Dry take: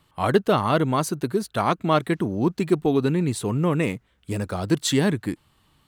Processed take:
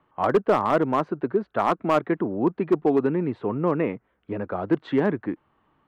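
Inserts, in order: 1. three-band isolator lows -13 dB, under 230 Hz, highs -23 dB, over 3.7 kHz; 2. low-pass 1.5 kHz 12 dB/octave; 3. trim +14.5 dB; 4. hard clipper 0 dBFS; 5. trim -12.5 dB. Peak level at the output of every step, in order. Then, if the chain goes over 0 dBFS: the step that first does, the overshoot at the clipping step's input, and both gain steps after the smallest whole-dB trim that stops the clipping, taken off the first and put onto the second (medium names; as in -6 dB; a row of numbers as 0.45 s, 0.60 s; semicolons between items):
-7.0 dBFS, -8.0 dBFS, +6.5 dBFS, 0.0 dBFS, -12.5 dBFS; step 3, 6.5 dB; step 3 +7.5 dB, step 5 -5.5 dB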